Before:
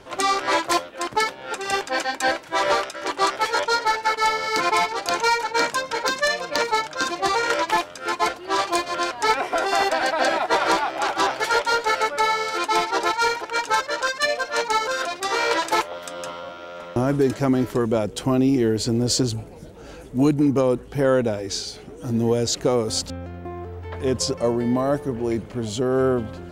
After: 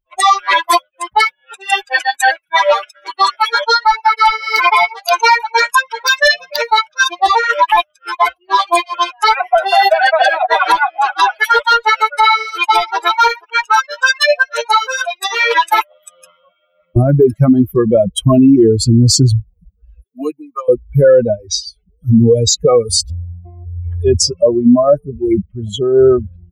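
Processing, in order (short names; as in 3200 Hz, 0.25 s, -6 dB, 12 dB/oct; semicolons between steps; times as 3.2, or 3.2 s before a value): per-bin expansion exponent 3; 20.02–20.68 HPF 380 Hz -> 1200 Hz 24 dB/oct; maximiser +23 dB; gain -1 dB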